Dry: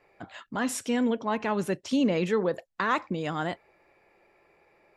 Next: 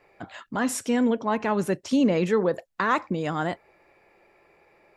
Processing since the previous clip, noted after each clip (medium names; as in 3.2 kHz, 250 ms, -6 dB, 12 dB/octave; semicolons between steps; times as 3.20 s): dynamic bell 3.2 kHz, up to -4 dB, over -49 dBFS, Q 1.2; trim +3.5 dB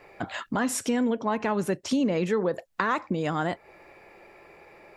compression 2.5:1, threshold -36 dBFS, peak gain reduction 12.5 dB; trim +8 dB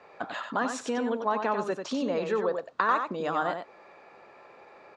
added noise brown -51 dBFS; cabinet simulation 330–6000 Hz, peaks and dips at 340 Hz -5 dB, 1.2 kHz +4 dB, 2.1 kHz -8 dB, 3 kHz -4 dB, 5.3 kHz -6 dB; delay 92 ms -6.5 dB